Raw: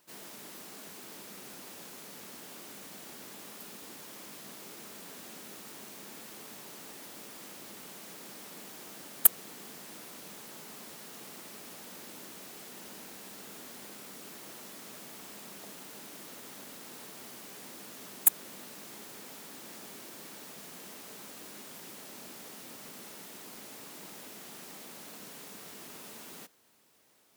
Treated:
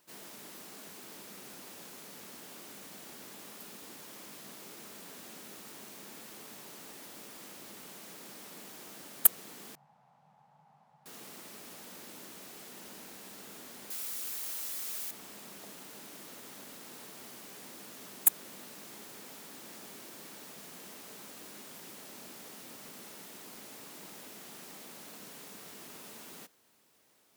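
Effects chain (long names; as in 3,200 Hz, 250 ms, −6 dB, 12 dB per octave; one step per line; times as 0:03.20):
0:09.75–0:11.06: pair of resonant band-passes 340 Hz, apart 2.5 octaves
0:13.90–0:15.11: spectral tilt +3.5 dB per octave
level −1.5 dB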